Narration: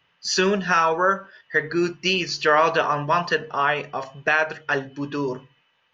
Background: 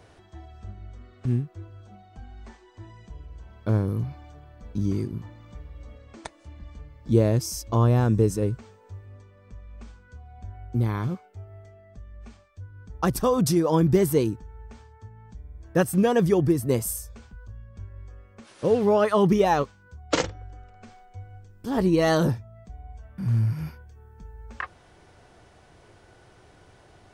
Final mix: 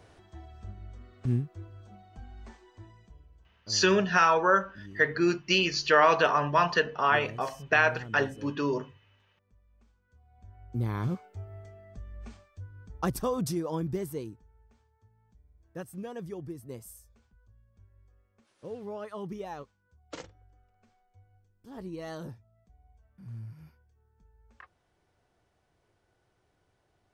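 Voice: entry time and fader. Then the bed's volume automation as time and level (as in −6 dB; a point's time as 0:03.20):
3.45 s, −3.0 dB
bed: 0:02.68 −3 dB
0:03.64 −21 dB
0:09.93 −21 dB
0:11.22 0 dB
0:12.33 0 dB
0:14.67 −19 dB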